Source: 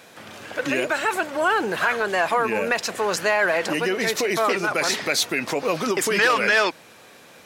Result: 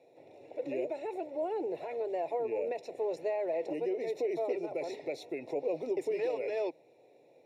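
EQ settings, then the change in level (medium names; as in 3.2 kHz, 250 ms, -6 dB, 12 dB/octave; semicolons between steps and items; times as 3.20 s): boxcar filter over 28 samples; high-pass 140 Hz 24 dB/octave; static phaser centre 490 Hz, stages 4; -6.0 dB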